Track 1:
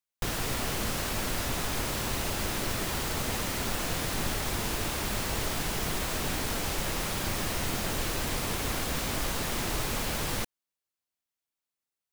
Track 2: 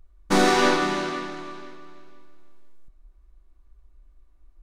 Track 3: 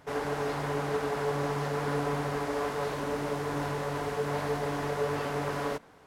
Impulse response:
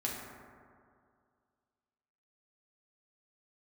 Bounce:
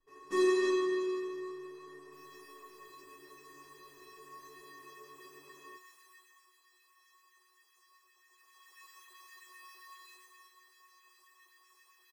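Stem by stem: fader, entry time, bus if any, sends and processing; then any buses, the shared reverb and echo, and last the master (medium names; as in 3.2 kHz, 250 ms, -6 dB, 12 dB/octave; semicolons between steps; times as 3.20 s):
5.94 s -12 dB -> 6.56 s -20.5 dB -> 8.21 s -20.5 dB -> 8.88 s -9.5 dB -> 10.09 s -9.5 dB -> 10.56 s -17 dB, 1.90 s, send -9 dB, LFO high-pass sine 7.6 Hz 740–1900 Hz
+2.5 dB, 0.00 s, no send, none
-2.0 dB, 0.00 s, no send, none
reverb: on, RT60 2.2 s, pre-delay 4 ms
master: feedback comb 370 Hz, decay 0.3 s, harmonics odd, mix 100%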